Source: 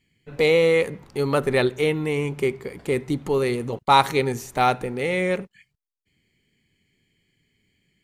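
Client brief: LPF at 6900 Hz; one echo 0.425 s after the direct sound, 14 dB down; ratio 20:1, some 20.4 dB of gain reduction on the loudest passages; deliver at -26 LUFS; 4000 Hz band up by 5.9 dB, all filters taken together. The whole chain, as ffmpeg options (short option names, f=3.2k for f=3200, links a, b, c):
-af "lowpass=6.9k,equalizer=f=4k:t=o:g=7,acompressor=threshold=-29dB:ratio=20,aecho=1:1:425:0.2,volume=8dB"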